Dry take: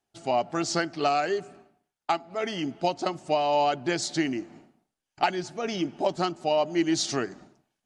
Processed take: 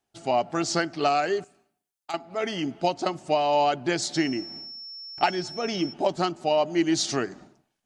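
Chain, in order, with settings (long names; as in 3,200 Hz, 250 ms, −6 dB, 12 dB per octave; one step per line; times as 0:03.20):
0:01.44–0:02.14: first-order pre-emphasis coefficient 0.8
0:04.12–0:05.92: steady tone 5,400 Hz −39 dBFS
level +1.5 dB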